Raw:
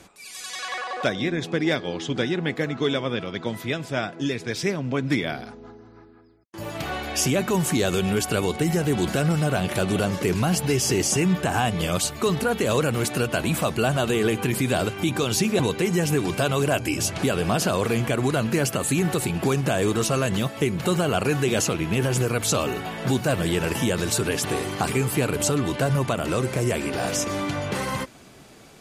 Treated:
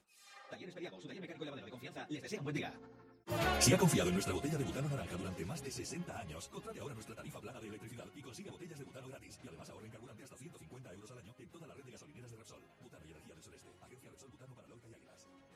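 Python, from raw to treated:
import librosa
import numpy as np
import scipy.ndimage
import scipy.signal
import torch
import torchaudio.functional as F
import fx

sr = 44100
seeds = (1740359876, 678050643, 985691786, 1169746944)

y = fx.doppler_pass(x, sr, speed_mps=25, closest_m=12.0, pass_at_s=6.43)
y = fx.stretch_vocoder_free(y, sr, factor=0.54)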